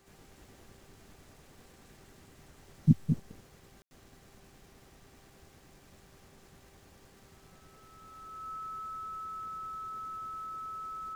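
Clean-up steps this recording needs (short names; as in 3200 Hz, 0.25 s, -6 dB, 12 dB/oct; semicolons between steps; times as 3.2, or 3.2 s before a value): de-hum 392 Hz, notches 7; notch 1300 Hz, Q 30; room tone fill 3.82–3.91; inverse comb 0.211 s -7 dB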